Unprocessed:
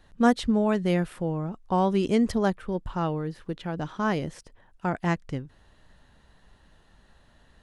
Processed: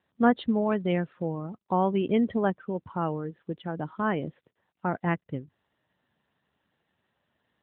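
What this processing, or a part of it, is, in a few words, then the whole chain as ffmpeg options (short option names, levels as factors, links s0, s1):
mobile call with aggressive noise cancelling: -af "highpass=f=130:p=1,afftdn=nr=12:nf=-39" -ar 8000 -c:a libopencore_amrnb -b:a 12200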